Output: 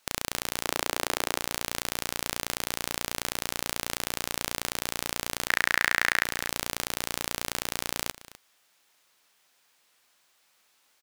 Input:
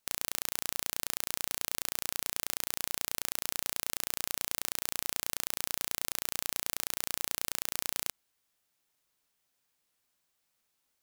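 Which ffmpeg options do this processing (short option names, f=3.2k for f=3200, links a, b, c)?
-filter_complex "[0:a]asettb=1/sr,asplit=3[a][b][c];[a]atrim=end=0.634[d];[b]atrim=start=0.63:end=1.4,asetpts=PTS-STARTPTS,afade=t=in:d=0.004:c=qsin,afade=t=out:st=0.766:d=0.004:c=qsin,highpass=f=290:w=0.5412,highpass=f=290:w=1.3066[e];[c]atrim=start=1.396[f];[d][e]acrossfade=d=0.004:c1=hsin:c2=qsin[g];[g][f]acrossfade=d=0.004:c1=qsin:c2=hsin,asettb=1/sr,asplit=3[h][i][j];[h]atrim=end=5.484[k];[i]atrim=start=5.48:end=6.25,asetpts=PTS-STARTPTS,afade=t=in:d=0.004:c=qsin,afade=t=out:st=0.766:d=0.004:c=qsin,equalizer=f=1.8k:t=o:w=0.71:g=13[l];[j]atrim=start=6.246[m];[k][l]acrossfade=d=0.004:c1=hsin:c2=qsin[n];[n][m]acrossfade=d=0.004:c1=qsin:c2=hsin,asplit=2[o][p];[p]highpass=f=720:p=1,volume=16dB,asoftclip=type=tanh:threshold=-3.5dB[q];[o][q]amix=inputs=2:normalize=0,lowpass=f=4.8k:p=1,volume=-6dB,aecho=1:1:253:0.133,volume=5.5dB"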